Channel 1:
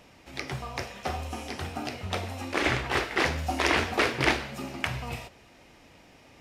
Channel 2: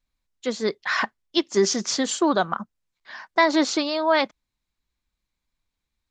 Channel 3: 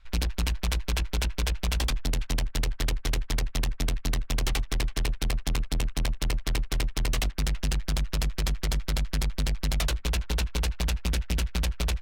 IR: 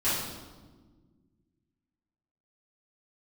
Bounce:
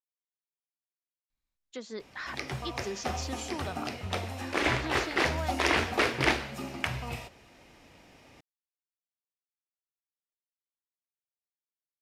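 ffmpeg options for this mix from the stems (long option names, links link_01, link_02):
-filter_complex "[0:a]adelay=2000,volume=-1.5dB[link_01];[1:a]acompressor=threshold=-32dB:ratio=2,adelay=1300,volume=-9dB[link_02];[link_01][link_02]amix=inputs=2:normalize=0"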